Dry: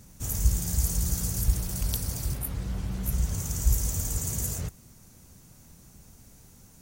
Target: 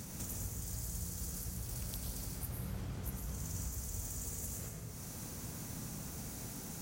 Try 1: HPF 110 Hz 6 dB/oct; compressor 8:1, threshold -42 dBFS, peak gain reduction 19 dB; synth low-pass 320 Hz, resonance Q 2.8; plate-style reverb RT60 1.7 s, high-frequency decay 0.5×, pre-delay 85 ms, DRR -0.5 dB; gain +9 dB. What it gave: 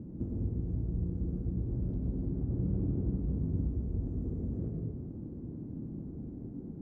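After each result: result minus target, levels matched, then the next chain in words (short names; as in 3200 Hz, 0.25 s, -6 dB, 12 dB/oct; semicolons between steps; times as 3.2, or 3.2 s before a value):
compressor: peak gain reduction -9 dB; 250 Hz band +6.0 dB
HPF 110 Hz 6 dB/oct; compressor 8:1, threshold -52 dBFS, peak gain reduction 28 dB; synth low-pass 320 Hz, resonance Q 2.8; plate-style reverb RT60 1.7 s, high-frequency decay 0.5×, pre-delay 85 ms, DRR -0.5 dB; gain +9 dB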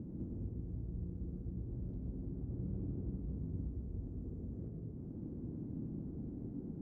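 250 Hz band +6.5 dB
HPF 110 Hz 6 dB/oct; compressor 8:1, threshold -52 dBFS, peak gain reduction 28 dB; plate-style reverb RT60 1.7 s, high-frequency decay 0.5×, pre-delay 85 ms, DRR -0.5 dB; gain +9 dB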